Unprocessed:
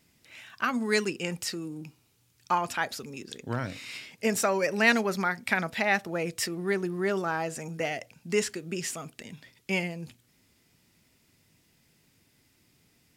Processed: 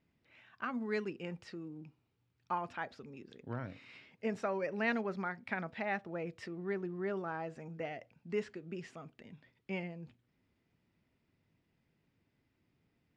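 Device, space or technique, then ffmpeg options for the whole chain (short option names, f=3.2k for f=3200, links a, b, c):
phone in a pocket: -af "lowpass=3.5k,highshelf=f=2.2k:g=-9,volume=-8.5dB"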